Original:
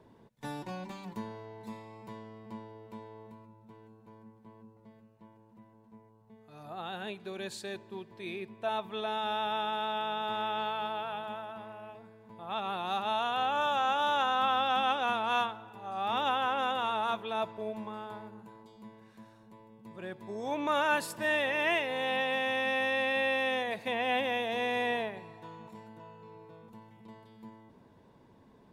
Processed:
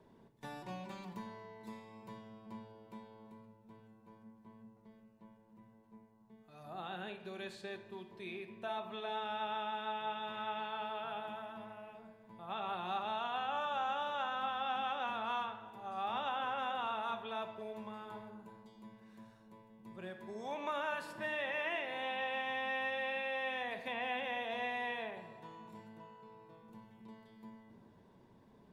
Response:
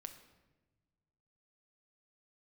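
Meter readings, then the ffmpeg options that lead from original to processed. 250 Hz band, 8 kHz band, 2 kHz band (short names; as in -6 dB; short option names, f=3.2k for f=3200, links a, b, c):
-8.0 dB, under -10 dB, -7.5 dB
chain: -filter_complex "[0:a]acrossover=split=630|3700[a][b][c];[a]acompressor=threshold=-43dB:ratio=4[d];[b]acompressor=threshold=-32dB:ratio=4[e];[c]acompressor=threshold=-59dB:ratio=4[f];[d][e][f]amix=inputs=3:normalize=0[g];[1:a]atrim=start_sample=2205,asetrate=52920,aresample=44100[h];[g][h]afir=irnorm=-1:irlink=0,volume=2.5dB"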